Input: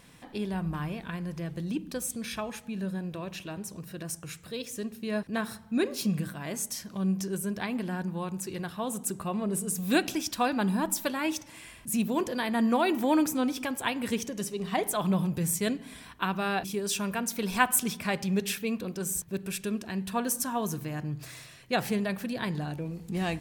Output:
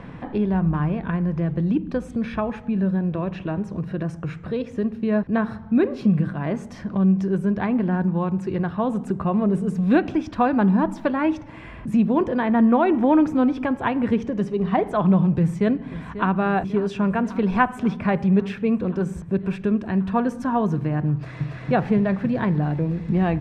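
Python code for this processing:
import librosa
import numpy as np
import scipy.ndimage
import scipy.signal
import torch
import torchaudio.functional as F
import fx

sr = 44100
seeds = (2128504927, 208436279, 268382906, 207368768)

y = fx.notch(x, sr, hz=4500.0, q=7.0, at=(12.24, 13.23))
y = fx.echo_throw(y, sr, start_s=15.32, length_s=1.01, ms=540, feedback_pct=80, wet_db=-17.5)
y = fx.echo_throw(y, sr, start_s=21.12, length_s=0.46, ms=280, feedback_pct=85, wet_db=-2.5)
y = scipy.signal.sosfilt(scipy.signal.butter(2, 1500.0, 'lowpass', fs=sr, output='sos'), y)
y = fx.low_shelf(y, sr, hz=160.0, db=7.0)
y = fx.band_squash(y, sr, depth_pct=40)
y = y * librosa.db_to_amplitude(8.0)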